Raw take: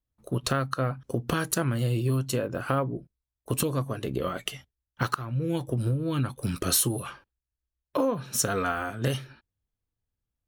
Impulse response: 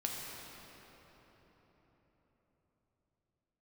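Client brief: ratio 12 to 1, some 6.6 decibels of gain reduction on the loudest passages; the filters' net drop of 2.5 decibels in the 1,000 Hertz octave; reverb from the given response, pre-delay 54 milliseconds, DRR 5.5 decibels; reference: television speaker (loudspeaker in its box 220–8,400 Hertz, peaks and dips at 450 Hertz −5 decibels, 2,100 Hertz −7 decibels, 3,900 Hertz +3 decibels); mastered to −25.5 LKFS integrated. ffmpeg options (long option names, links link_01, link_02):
-filter_complex "[0:a]equalizer=frequency=1000:width_type=o:gain=-3,acompressor=threshold=-28dB:ratio=12,asplit=2[link_01][link_02];[1:a]atrim=start_sample=2205,adelay=54[link_03];[link_02][link_03]afir=irnorm=-1:irlink=0,volume=-8dB[link_04];[link_01][link_04]amix=inputs=2:normalize=0,highpass=frequency=220:width=0.5412,highpass=frequency=220:width=1.3066,equalizer=frequency=450:width_type=q:width=4:gain=-5,equalizer=frequency=2100:width_type=q:width=4:gain=-7,equalizer=frequency=3900:width_type=q:width=4:gain=3,lowpass=frequency=8400:width=0.5412,lowpass=frequency=8400:width=1.3066,volume=11.5dB"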